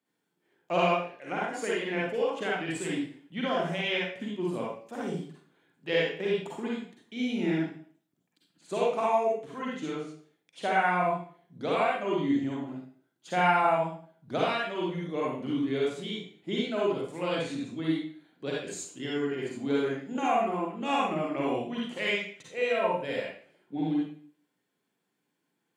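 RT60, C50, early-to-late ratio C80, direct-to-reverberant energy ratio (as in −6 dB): 0.50 s, −3.0 dB, 5.0 dB, −5.0 dB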